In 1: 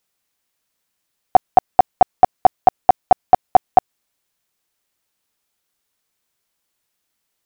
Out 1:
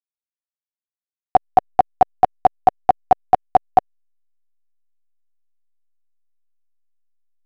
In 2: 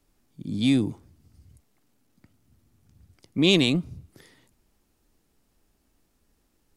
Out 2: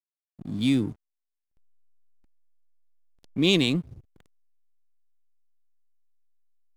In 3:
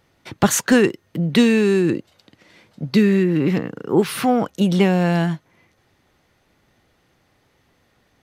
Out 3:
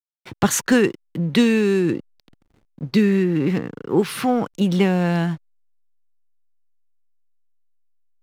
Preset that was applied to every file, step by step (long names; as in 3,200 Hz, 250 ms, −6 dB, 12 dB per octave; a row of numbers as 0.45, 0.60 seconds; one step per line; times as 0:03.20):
parametric band 630 Hz −4.5 dB 0.27 octaves
slack as between gear wheels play −37.5 dBFS
level −1.5 dB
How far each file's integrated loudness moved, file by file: −2.5, −1.5, −1.5 LU